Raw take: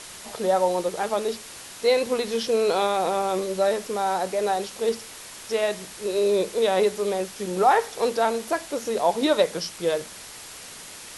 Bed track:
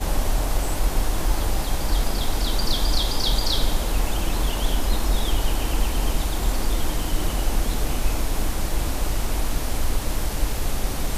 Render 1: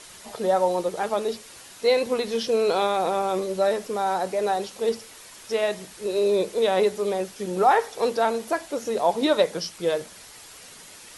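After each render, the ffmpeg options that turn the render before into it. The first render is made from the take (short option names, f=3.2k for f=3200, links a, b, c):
-af "afftdn=nr=6:nf=-42"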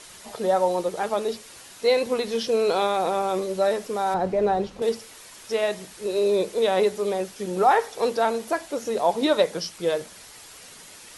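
-filter_complex "[0:a]asettb=1/sr,asplit=3[a][b][c];[a]atrim=end=4.144[d];[b]atrim=start=4.14:end=4.82,asetpts=PTS-STARTPTS,afade=t=in:d=0.004:c=qsin,afade=t=out:st=0.676:d=0.004:c=qsin,aemphasis=mode=reproduction:type=riaa[e];[c]atrim=start=4.816[f];[d][e]acrossfade=d=0.004:c1=hsin:c2=qsin[g];[g][f]acrossfade=d=0.004:c1=qsin:c2=hsin"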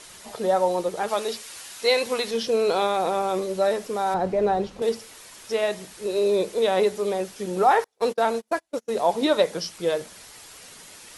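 -filter_complex "[0:a]asettb=1/sr,asplit=3[a][b][c];[a]atrim=end=1.084[d];[b]atrim=start=1.08:end=2.31,asetpts=PTS-STARTPTS,afade=t=in:d=0.004:c=qsin,afade=t=out:st=1.226:d=0.004:c=qsin,tiltshelf=f=690:g=-5.5[e];[c]atrim=start=2.306[f];[d][e]acrossfade=d=0.004:c1=hsin:c2=qsin[g];[g][f]acrossfade=d=0.004:c1=qsin:c2=hsin,asettb=1/sr,asplit=3[h][i][j];[h]atrim=end=7.844[k];[i]atrim=start=7.84:end=8.96,asetpts=PTS-STARTPTS,afade=t=in:d=0.004:c=qsin,afade=t=out:st=1.116:d=0.004:c=qsin,agate=range=-36dB:threshold=-29dB:ratio=16:release=100:detection=peak[l];[j]atrim=start=8.956[m];[k][l]acrossfade=d=0.004:c1=hsin:c2=qsin[n];[n][m]acrossfade=d=0.004:c1=qsin:c2=hsin"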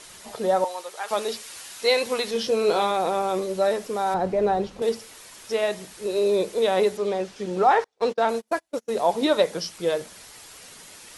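-filter_complex "[0:a]asettb=1/sr,asplit=3[a][b][c];[a]atrim=end=0.644[d];[b]atrim=start=0.64:end=1.11,asetpts=PTS-STARTPTS,afade=t=in:d=0.004:c=qsin,afade=t=out:st=0.466:d=0.004:c=qsin,highpass=1k[e];[c]atrim=start=1.106[f];[d][e]acrossfade=d=0.004:c1=hsin:c2=qsin[g];[g][f]acrossfade=d=0.004:c1=qsin:c2=hsin,asettb=1/sr,asplit=3[h][i][j];[h]atrim=end=2.344[k];[i]atrim=start=2.34:end=2.91,asetpts=PTS-STARTPTS,afade=t=in:d=0.004:c=qsin,afade=t=out:st=0.566:d=0.004:c=qsin,asplit=2[l][m];[m]adelay=19,volume=-7dB[n];[l][n]amix=inputs=2:normalize=0,atrim=end_sample=25137[o];[j]atrim=start=2.906[p];[k][o]acrossfade=d=0.004:c1=hsin:c2=qsin[q];[q][p]acrossfade=d=0.004:c1=qsin:c2=hsin,asettb=1/sr,asplit=3[r][s][t];[r]atrim=end=6.974[u];[s]atrim=start=6.97:end=8.29,asetpts=PTS-STARTPTS,afade=t=in:d=0.004:c=qsin,afade=t=out:st=1.316:d=0.004:c=qsin,lowpass=6k[v];[t]atrim=start=8.286[w];[u][v]acrossfade=d=0.004:c1=hsin:c2=qsin[x];[x][w]acrossfade=d=0.004:c1=qsin:c2=hsin"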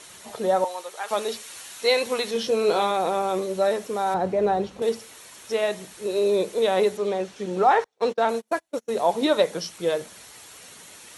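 -af "highpass=64,bandreject=f=4.9k:w=10"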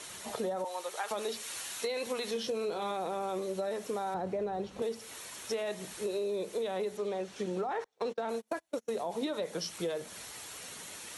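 -filter_complex "[0:a]acrossover=split=370[a][b];[b]alimiter=limit=-20dB:level=0:latency=1:release=27[c];[a][c]amix=inputs=2:normalize=0,acompressor=threshold=-32dB:ratio=6"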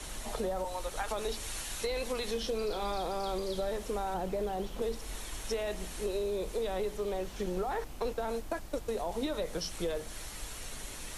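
-filter_complex "[1:a]volume=-21.5dB[a];[0:a][a]amix=inputs=2:normalize=0"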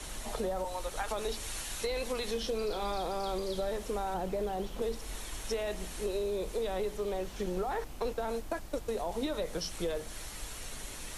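-af anull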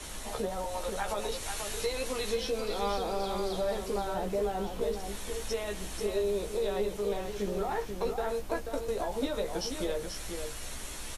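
-filter_complex "[0:a]asplit=2[a][b];[b]adelay=15,volume=-5dB[c];[a][c]amix=inputs=2:normalize=0,aecho=1:1:486:0.473"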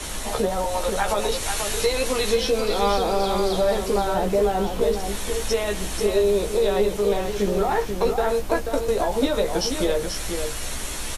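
-af "volume=10.5dB"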